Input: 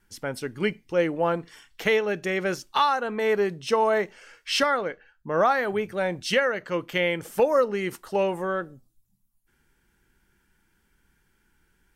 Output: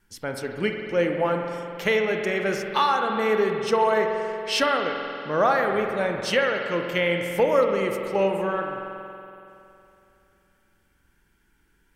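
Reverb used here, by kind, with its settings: spring tank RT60 2.8 s, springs 46 ms, chirp 25 ms, DRR 3 dB

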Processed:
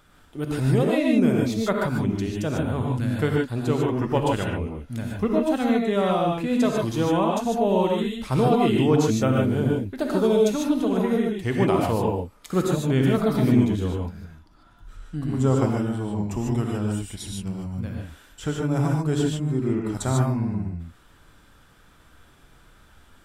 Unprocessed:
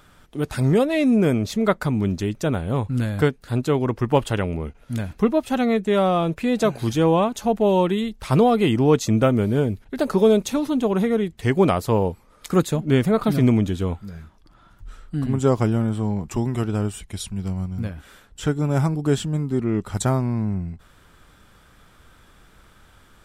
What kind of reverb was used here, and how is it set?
non-linear reverb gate 0.17 s rising, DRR -1 dB; gain -5.5 dB

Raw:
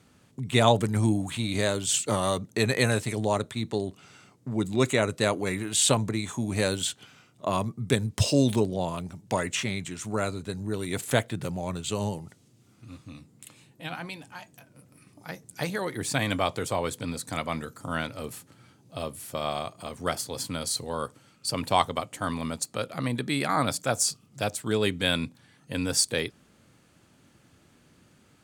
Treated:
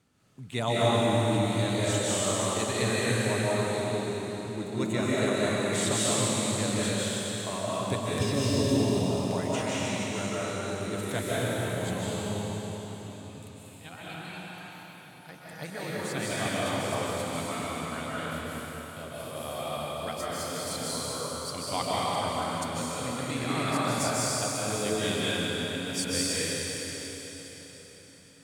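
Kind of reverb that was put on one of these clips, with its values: digital reverb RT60 4.4 s, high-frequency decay 1×, pre-delay 0.11 s, DRR -8.5 dB; gain -10 dB

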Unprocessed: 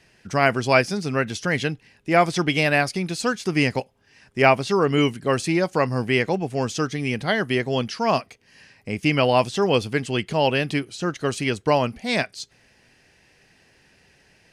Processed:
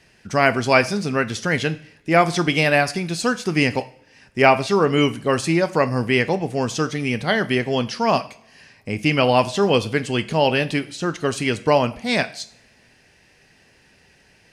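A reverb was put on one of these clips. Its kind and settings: two-slope reverb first 0.49 s, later 1.8 s, from -24 dB, DRR 11 dB; gain +2 dB

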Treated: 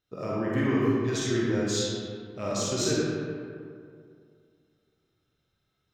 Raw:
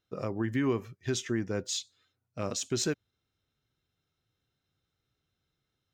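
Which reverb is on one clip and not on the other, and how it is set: digital reverb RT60 2.3 s, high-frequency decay 0.5×, pre-delay 5 ms, DRR -7 dB; gain -2 dB

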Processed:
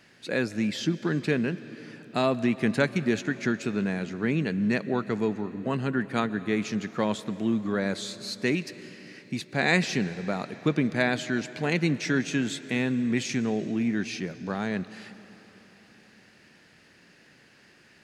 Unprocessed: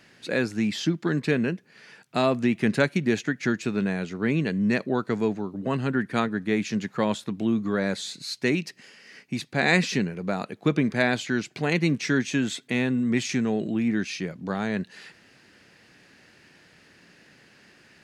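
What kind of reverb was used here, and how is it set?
digital reverb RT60 4.2 s, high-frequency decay 0.9×, pre-delay 90 ms, DRR 15 dB; gain -2 dB

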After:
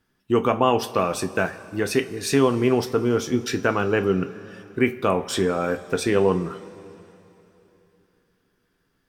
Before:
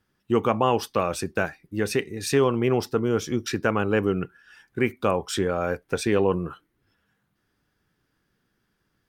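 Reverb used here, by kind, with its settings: two-slope reverb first 0.24 s, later 3.3 s, from -19 dB, DRR 7 dB; gain +1.5 dB

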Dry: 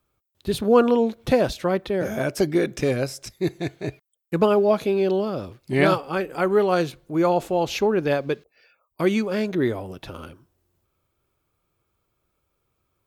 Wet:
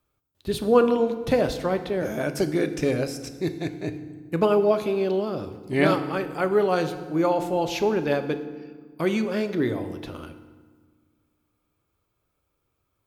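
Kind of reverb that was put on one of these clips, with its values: FDN reverb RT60 1.5 s, low-frequency decay 1.45×, high-frequency decay 0.7×, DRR 8.5 dB; gain -2.5 dB

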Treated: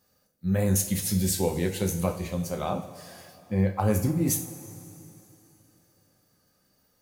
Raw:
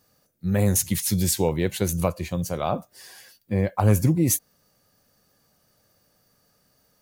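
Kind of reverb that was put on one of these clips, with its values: two-slope reverb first 0.4 s, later 3.3 s, from -17 dB, DRR 2.5 dB; gain -5.5 dB

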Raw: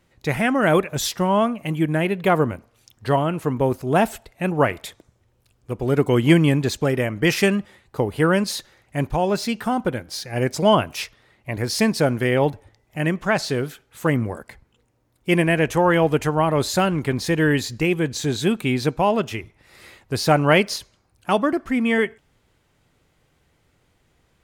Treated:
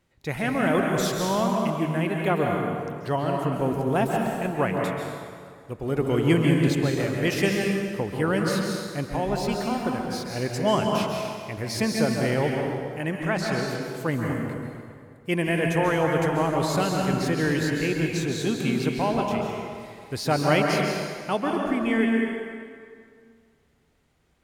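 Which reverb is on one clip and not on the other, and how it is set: plate-style reverb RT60 2.1 s, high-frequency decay 0.75×, pre-delay 0.12 s, DRR 0 dB; gain -7 dB

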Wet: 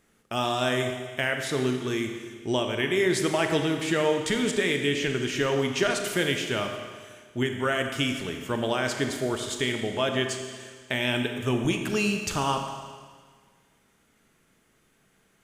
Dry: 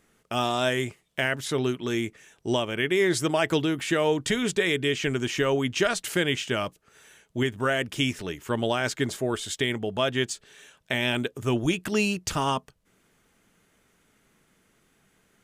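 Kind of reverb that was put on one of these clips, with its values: Schroeder reverb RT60 1.7 s, combs from 28 ms, DRR 4.5 dB; gain -1.5 dB

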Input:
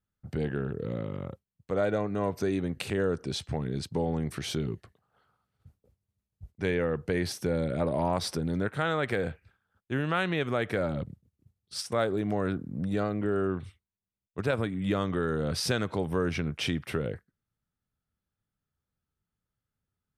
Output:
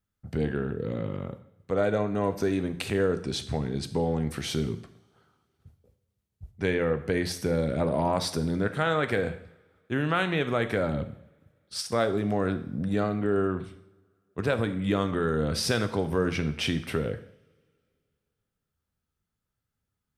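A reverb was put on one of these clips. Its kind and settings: two-slope reverb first 0.65 s, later 2.4 s, from -24 dB, DRR 9 dB; gain +2 dB

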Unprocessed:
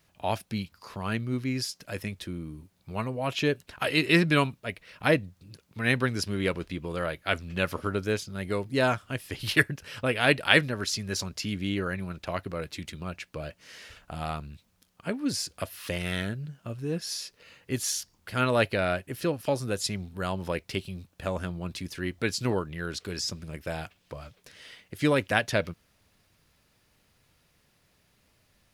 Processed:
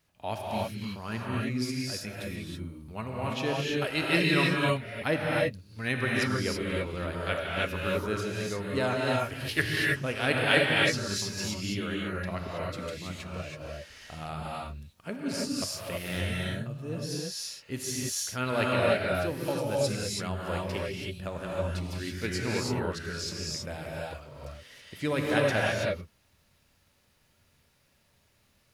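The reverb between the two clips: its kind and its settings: non-linear reverb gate 0.35 s rising, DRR -4 dB; gain -6 dB

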